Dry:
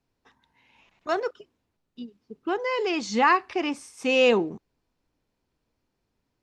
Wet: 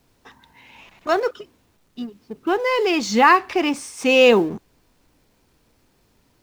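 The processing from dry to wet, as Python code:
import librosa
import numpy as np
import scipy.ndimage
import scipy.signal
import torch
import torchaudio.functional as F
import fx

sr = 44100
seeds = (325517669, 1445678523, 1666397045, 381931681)

y = fx.law_mismatch(x, sr, coded='mu')
y = y * 10.0 ** (6.0 / 20.0)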